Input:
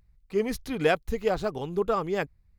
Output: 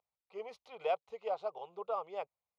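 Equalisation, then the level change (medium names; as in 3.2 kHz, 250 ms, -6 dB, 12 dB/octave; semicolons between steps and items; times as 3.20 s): Butterworth band-pass 1.2 kHz, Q 0.56; static phaser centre 700 Hz, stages 4; -5.0 dB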